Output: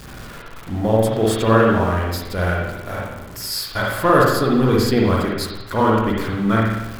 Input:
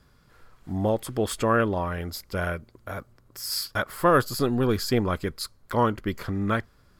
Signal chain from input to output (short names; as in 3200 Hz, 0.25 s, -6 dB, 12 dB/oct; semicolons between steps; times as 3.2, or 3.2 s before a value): zero-crossing step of -36 dBFS; dynamic EQ 3800 Hz, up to +4 dB, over -50 dBFS, Q 5.7; spring tank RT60 1 s, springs 45/54 ms, chirp 45 ms, DRR -3 dB; gain +2 dB